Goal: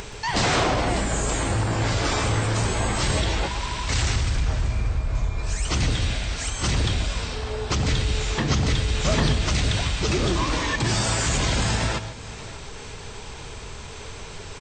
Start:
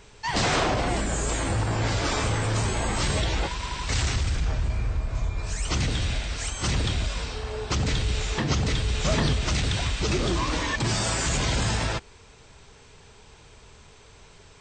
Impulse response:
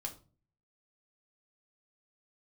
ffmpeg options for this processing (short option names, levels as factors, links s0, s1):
-filter_complex "[0:a]acompressor=mode=upward:threshold=0.0398:ratio=2.5,aecho=1:1:590:0.133,asplit=2[s0][s1];[1:a]atrim=start_sample=2205,adelay=125[s2];[s1][s2]afir=irnorm=-1:irlink=0,volume=0.316[s3];[s0][s3]amix=inputs=2:normalize=0,volume=1.26"